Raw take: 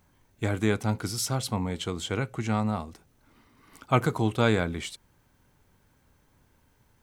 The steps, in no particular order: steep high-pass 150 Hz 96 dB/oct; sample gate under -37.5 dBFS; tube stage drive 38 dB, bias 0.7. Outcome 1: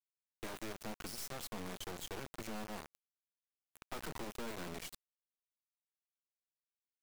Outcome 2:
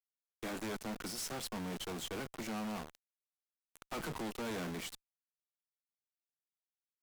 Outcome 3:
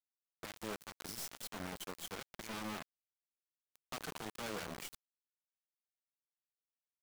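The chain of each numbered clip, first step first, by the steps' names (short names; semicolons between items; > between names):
steep high-pass > tube stage > sample gate; steep high-pass > sample gate > tube stage; tube stage > steep high-pass > sample gate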